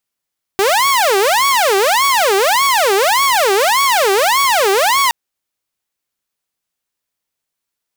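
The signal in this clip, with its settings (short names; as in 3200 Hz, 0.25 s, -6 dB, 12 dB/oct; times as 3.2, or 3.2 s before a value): siren wail 385–1120 Hz 1.7/s saw -8 dBFS 4.52 s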